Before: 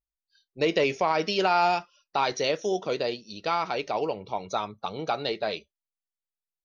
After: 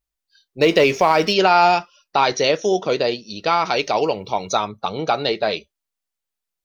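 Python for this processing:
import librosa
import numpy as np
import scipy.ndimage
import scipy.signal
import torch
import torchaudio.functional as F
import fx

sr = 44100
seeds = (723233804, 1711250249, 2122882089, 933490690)

y = fx.law_mismatch(x, sr, coded='mu', at=(0.6, 1.32), fade=0.02)
y = fx.high_shelf(y, sr, hz=4000.0, db=10.0, at=(3.65, 4.57))
y = y * librosa.db_to_amplitude(8.5)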